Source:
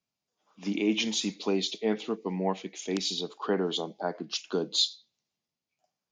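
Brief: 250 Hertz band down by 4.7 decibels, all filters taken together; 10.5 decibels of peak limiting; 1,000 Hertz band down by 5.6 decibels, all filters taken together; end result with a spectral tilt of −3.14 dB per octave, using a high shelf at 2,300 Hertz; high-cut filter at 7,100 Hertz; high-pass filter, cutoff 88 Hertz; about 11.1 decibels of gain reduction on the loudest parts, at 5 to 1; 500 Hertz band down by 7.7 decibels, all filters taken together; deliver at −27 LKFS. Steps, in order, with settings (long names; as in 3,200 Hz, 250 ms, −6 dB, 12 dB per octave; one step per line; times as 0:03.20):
high-pass filter 88 Hz
low-pass filter 7,100 Hz
parametric band 250 Hz −3.5 dB
parametric band 500 Hz −8 dB
parametric band 1,000 Hz −5 dB
high-shelf EQ 2,300 Hz +5 dB
downward compressor 5 to 1, threshold −31 dBFS
level +10.5 dB
brickwall limiter −15.5 dBFS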